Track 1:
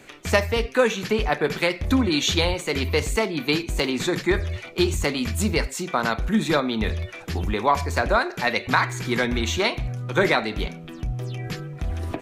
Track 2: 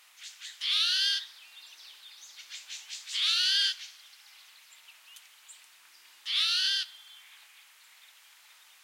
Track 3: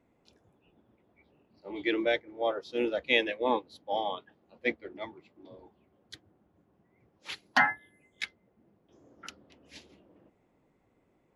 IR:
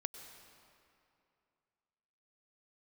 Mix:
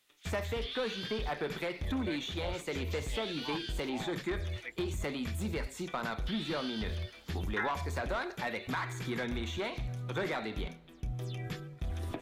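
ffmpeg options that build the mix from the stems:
-filter_complex "[0:a]agate=range=-33dB:threshold=-27dB:ratio=3:detection=peak,asoftclip=type=tanh:threshold=-17dB,volume=-3.5dB,asplit=2[link_01][link_02];[link_02]volume=-23.5dB[link_03];[1:a]agate=range=-16dB:threshold=-44dB:ratio=16:detection=peak,acompressor=threshold=-30dB:ratio=6,volume=-4dB,asplit=2[link_04][link_05];[link_05]volume=-6.5dB[link_06];[2:a]highpass=710,asplit=2[link_07][link_08];[link_08]afreqshift=-2.4[link_09];[link_07][link_09]amix=inputs=2:normalize=1,volume=-9.5dB[link_10];[link_01][link_04]amix=inputs=2:normalize=0,equalizer=frequency=3500:width=6.9:gain=8.5,acompressor=threshold=-37dB:ratio=2.5,volume=0dB[link_11];[3:a]atrim=start_sample=2205[link_12];[link_03][link_06]amix=inputs=2:normalize=0[link_13];[link_13][link_12]afir=irnorm=-1:irlink=0[link_14];[link_10][link_11][link_14]amix=inputs=3:normalize=0,acrossover=split=2600[link_15][link_16];[link_16]acompressor=threshold=-49dB:ratio=4:attack=1:release=60[link_17];[link_15][link_17]amix=inputs=2:normalize=0,highshelf=frequency=7000:gain=5.5"

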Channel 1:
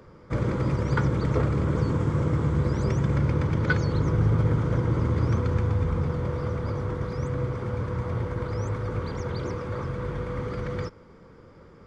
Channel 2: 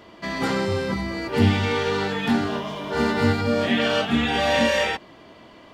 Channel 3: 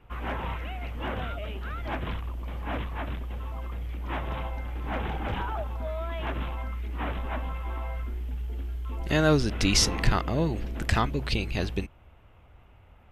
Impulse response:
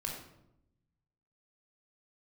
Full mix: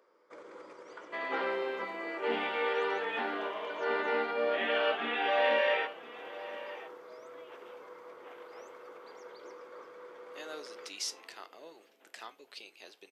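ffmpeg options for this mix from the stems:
-filter_complex "[0:a]alimiter=limit=-20.5dB:level=0:latency=1:release=85,acontrast=85,volume=-16dB[link_01];[1:a]lowpass=frequency=3000:width=0.5412,lowpass=frequency=3000:width=1.3066,adelay=900,volume=-2dB,asplit=2[link_02][link_03];[link_03]volume=-16.5dB[link_04];[2:a]adynamicequalizer=threshold=0.00501:dfrequency=3000:dqfactor=0.7:tfrequency=3000:tqfactor=0.7:attack=5:release=100:ratio=0.375:range=3.5:mode=boostabove:tftype=highshelf,adelay=1250,volume=-15.5dB[link_05];[link_04]aecho=0:1:1014:1[link_06];[link_01][link_02][link_05][link_06]amix=inputs=4:normalize=0,highpass=frequency=390:width=0.5412,highpass=frequency=390:width=1.3066,flanger=delay=9.8:depth=1.2:regen=-75:speed=0.41:shape=triangular"

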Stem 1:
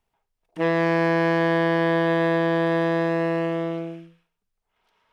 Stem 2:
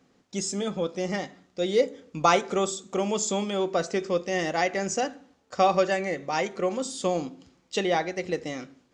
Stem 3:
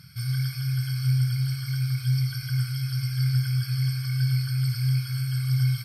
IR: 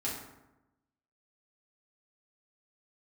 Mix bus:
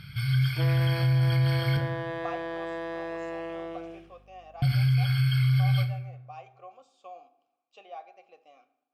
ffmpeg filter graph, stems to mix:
-filter_complex "[0:a]highpass=340,acompressor=threshold=-36dB:ratio=2,aeval=exprs='val(0)+0.00178*(sin(2*PI*50*n/s)+sin(2*PI*2*50*n/s)/2+sin(2*PI*3*50*n/s)/3+sin(2*PI*4*50*n/s)/4+sin(2*PI*5*50*n/s)/5)':channel_layout=same,volume=-2.5dB[link_01];[1:a]asplit=3[link_02][link_03][link_04];[link_02]bandpass=frequency=730:width_type=q:width=8,volume=0dB[link_05];[link_03]bandpass=frequency=1090:width_type=q:width=8,volume=-6dB[link_06];[link_04]bandpass=frequency=2440:width_type=q:width=8,volume=-9dB[link_07];[link_05][link_06][link_07]amix=inputs=3:normalize=0,lowshelf=frequency=410:gain=-12,volume=-8.5dB,asplit=2[link_08][link_09];[link_09]volume=-14.5dB[link_10];[2:a]highshelf=frequency=4400:width_type=q:width=3:gain=-10.5,volume=2.5dB,asplit=3[link_11][link_12][link_13];[link_11]atrim=end=1.77,asetpts=PTS-STARTPTS,afade=type=out:start_time=1.766:duration=0.004:curve=hsin[link_14];[link_12]atrim=start=1.77:end=4.62,asetpts=PTS-STARTPTS,volume=0[link_15];[link_13]atrim=start=4.62,asetpts=PTS-STARTPTS,afade=type=in:duration=0.004:curve=hsin[link_16];[link_14][link_15][link_16]concat=n=3:v=0:a=1,asplit=2[link_17][link_18];[link_18]volume=-6dB[link_19];[3:a]atrim=start_sample=2205[link_20];[link_10][link_19]amix=inputs=2:normalize=0[link_21];[link_21][link_20]afir=irnorm=-1:irlink=0[link_22];[link_01][link_08][link_17][link_22]amix=inputs=4:normalize=0,alimiter=limit=-17.5dB:level=0:latency=1:release=16"

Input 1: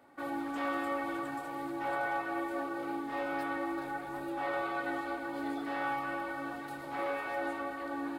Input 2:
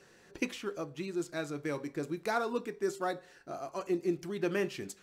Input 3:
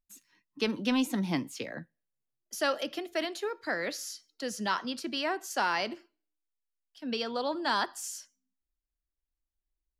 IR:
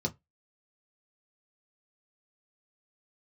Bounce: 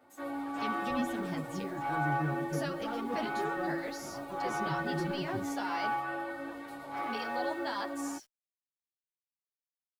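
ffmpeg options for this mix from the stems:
-filter_complex "[0:a]volume=1dB[link_01];[1:a]aemphasis=mode=reproduction:type=bsi,asoftclip=type=tanh:threshold=-26.5dB,adelay=550,volume=-4dB,asplit=2[link_02][link_03];[link_03]volume=-8dB[link_04];[2:a]volume=-5dB[link_05];[link_02][link_05]amix=inputs=2:normalize=0,acrusher=bits=9:mix=0:aa=0.000001,alimiter=level_in=2dB:limit=-24dB:level=0:latency=1:release=163,volume=-2dB,volume=0dB[link_06];[3:a]atrim=start_sample=2205[link_07];[link_04][link_07]afir=irnorm=-1:irlink=0[link_08];[link_01][link_06][link_08]amix=inputs=3:normalize=0,equalizer=frequency=740:width=1.5:gain=2.5,asplit=2[link_09][link_10];[link_10]adelay=8.7,afreqshift=0.78[link_11];[link_09][link_11]amix=inputs=2:normalize=1"

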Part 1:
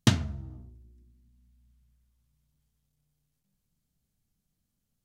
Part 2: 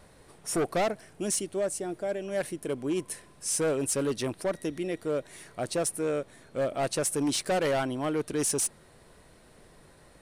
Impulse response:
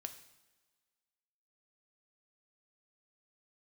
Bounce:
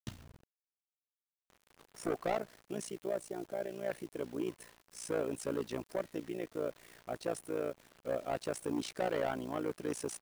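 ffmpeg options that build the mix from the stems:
-filter_complex "[0:a]acrusher=bits=9:mix=0:aa=0.000001,volume=-19.5dB[link_01];[1:a]lowpass=frequency=2200:poles=1,lowshelf=frequency=140:gain=-8.5,adelay=1500,volume=-2.5dB[link_02];[link_01][link_02]amix=inputs=2:normalize=0,acrusher=bits=8:mix=0:aa=0.000001,tremolo=f=58:d=0.857"

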